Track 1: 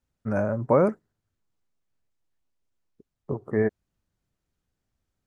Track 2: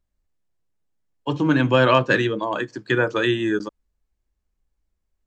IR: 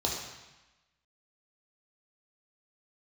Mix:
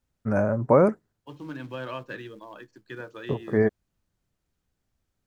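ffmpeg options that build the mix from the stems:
-filter_complex "[0:a]volume=2dB[a];[1:a]acrusher=bits=5:mode=log:mix=0:aa=0.000001,acrossover=split=5600[b][c];[c]acompressor=threshold=-51dB:ratio=4:attack=1:release=60[d];[b][d]amix=inputs=2:normalize=0,volume=-19dB[e];[a][e]amix=inputs=2:normalize=0"

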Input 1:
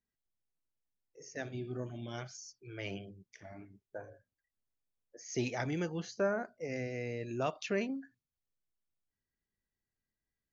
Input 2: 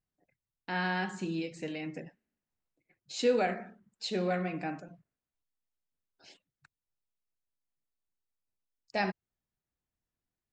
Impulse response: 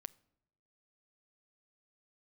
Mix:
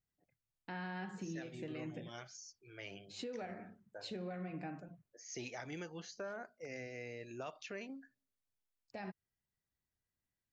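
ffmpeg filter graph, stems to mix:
-filter_complex "[0:a]lowshelf=f=430:g=-9,volume=-4.5dB,asplit=2[a][b];[b]volume=-14dB[c];[1:a]highshelf=f=4.8k:g=-10.5,acompressor=threshold=-34dB:ratio=10,equalizer=f=92:w=0.66:g=6.5,volume=-6dB[d];[2:a]atrim=start_sample=2205[e];[c][e]afir=irnorm=-1:irlink=0[f];[a][d][f]amix=inputs=3:normalize=0,alimiter=level_in=10.5dB:limit=-24dB:level=0:latency=1:release=125,volume=-10.5dB"

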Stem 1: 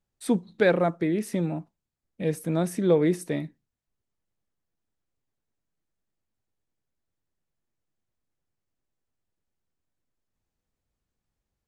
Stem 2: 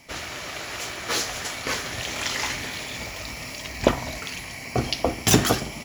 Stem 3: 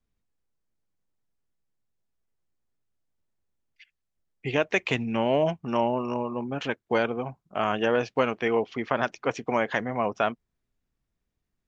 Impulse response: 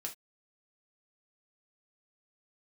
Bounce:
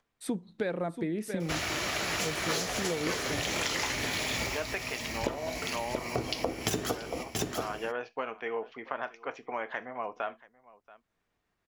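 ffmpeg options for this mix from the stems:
-filter_complex "[0:a]volume=-3.5dB,asplit=2[a][b];[b]volume=-13.5dB[c];[1:a]adynamicequalizer=threshold=0.0126:dfrequency=440:dqfactor=1.2:tfrequency=440:tqfactor=1.2:attack=5:release=100:ratio=0.375:range=3.5:mode=boostabove:tftype=bell,adelay=1400,volume=3dB,asplit=3[d][e][f];[e]volume=-11dB[g];[f]volume=-16dB[h];[2:a]acompressor=mode=upward:threshold=-46dB:ratio=2.5,bandpass=f=1.2k:t=q:w=0.58:csg=0,volume=-10dB,asplit=4[i][j][k][l];[j]volume=-3dB[m];[k]volume=-18.5dB[n];[l]apad=whole_len=319394[o];[d][o]sidechaincompress=threshold=-46dB:ratio=8:attack=31:release=566[p];[3:a]atrim=start_sample=2205[q];[g][m]amix=inputs=2:normalize=0[r];[r][q]afir=irnorm=-1:irlink=0[s];[c][h][n]amix=inputs=3:normalize=0,aecho=0:1:681:1[t];[a][p][i][s][t]amix=inputs=5:normalize=0,acompressor=threshold=-28dB:ratio=8"

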